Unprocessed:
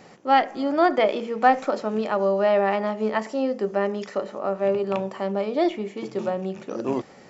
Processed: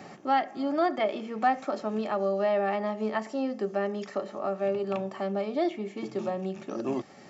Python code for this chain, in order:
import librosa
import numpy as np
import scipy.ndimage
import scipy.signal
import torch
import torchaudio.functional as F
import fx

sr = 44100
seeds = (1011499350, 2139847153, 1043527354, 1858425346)

y = fx.notch_comb(x, sr, f0_hz=490.0)
y = fx.band_squash(y, sr, depth_pct=40)
y = y * 10.0 ** (-5.0 / 20.0)